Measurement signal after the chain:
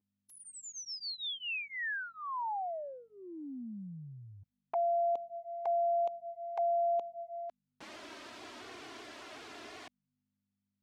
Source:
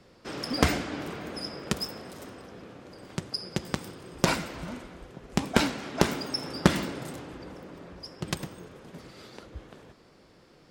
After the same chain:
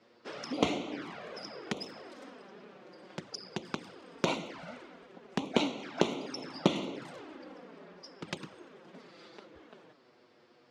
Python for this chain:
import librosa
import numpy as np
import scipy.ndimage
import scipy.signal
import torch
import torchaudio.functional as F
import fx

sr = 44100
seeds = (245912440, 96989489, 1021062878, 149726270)

y = fx.add_hum(x, sr, base_hz=50, snr_db=34)
y = fx.env_flanger(y, sr, rest_ms=10.1, full_db=-28.0)
y = fx.bandpass_edges(y, sr, low_hz=250.0, high_hz=4700.0)
y = y * 10.0 ** (-1.0 / 20.0)